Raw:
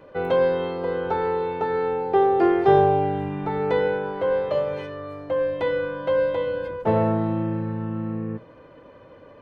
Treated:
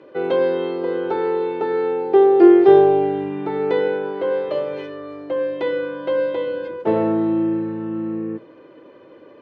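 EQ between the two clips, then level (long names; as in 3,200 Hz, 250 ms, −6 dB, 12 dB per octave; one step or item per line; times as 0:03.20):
band-pass filter 150–4,100 Hz
parametric band 350 Hz +13.5 dB 0.65 octaves
high-shelf EQ 2,700 Hz +11 dB
−3.0 dB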